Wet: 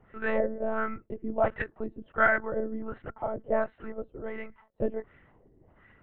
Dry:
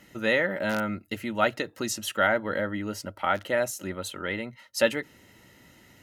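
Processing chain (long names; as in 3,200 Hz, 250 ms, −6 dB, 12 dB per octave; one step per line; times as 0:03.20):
auto-filter low-pass sine 1.4 Hz 390–1,800 Hz
one-pitch LPC vocoder at 8 kHz 220 Hz
level −4.5 dB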